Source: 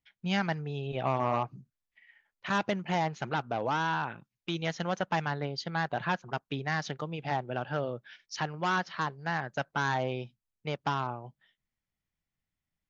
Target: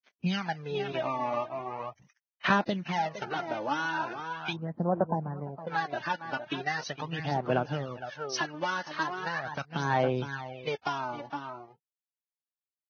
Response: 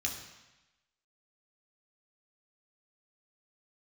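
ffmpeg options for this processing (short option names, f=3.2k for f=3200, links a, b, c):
-filter_complex "[0:a]equalizer=f=78:w=1.2:g=-8.5,acontrast=45,aeval=exprs='sgn(val(0))*max(abs(val(0))-0.00355,0)':c=same,asplit=2[a][b];[b]adelay=460.6,volume=-11dB,highshelf=f=4k:g=-10.4[c];[a][c]amix=inputs=2:normalize=0,acompressor=threshold=-29dB:ratio=3,asplit=3[d][e][f];[d]afade=t=out:st=2.91:d=0.02[g];[e]bandreject=f=74.37:t=h:w=4,bandreject=f=148.74:t=h:w=4,bandreject=f=223.11:t=h:w=4,bandreject=f=297.48:t=h:w=4,bandreject=f=371.85:t=h:w=4,bandreject=f=446.22:t=h:w=4,bandreject=f=520.59:t=h:w=4,bandreject=f=594.96:t=h:w=4,bandreject=f=669.33:t=h:w=4,bandreject=f=743.7:t=h:w=4,bandreject=f=818.07:t=h:w=4,bandreject=f=892.44:t=h:w=4,bandreject=f=966.81:t=h:w=4,bandreject=f=1.04118k:t=h:w=4,bandreject=f=1.11555k:t=h:w=4,bandreject=f=1.18992k:t=h:w=4,bandreject=f=1.26429k:t=h:w=4,bandreject=f=1.33866k:t=h:w=4,bandreject=f=1.41303k:t=h:w=4,bandreject=f=1.4874k:t=h:w=4,bandreject=f=1.56177k:t=h:w=4,bandreject=f=1.63614k:t=h:w=4,bandreject=f=1.71051k:t=h:w=4,bandreject=f=1.78488k:t=h:w=4,afade=t=in:st=2.91:d=0.02,afade=t=out:st=3.46:d=0.02[h];[f]afade=t=in:st=3.46:d=0.02[i];[g][h][i]amix=inputs=3:normalize=0,asplit=3[j][k][l];[j]afade=t=out:st=4.52:d=0.02[m];[k]lowpass=f=1k:w=0.5412,lowpass=f=1k:w=1.3066,afade=t=in:st=4.52:d=0.02,afade=t=out:st=5.67:d=0.02[n];[l]afade=t=in:st=5.67:d=0.02[o];[m][n][o]amix=inputs=3:normalize=0,aphaser=in_gain=1:out_gain=1:delay=3.5:decay=0.67:speed=0.4:type=sinusoidal,highpass=f=52:w=0.5412,highpass=f=52:w=1.3066,volume=-2.5dB" -ar 16000 -c:a libvorbis -b:a 16k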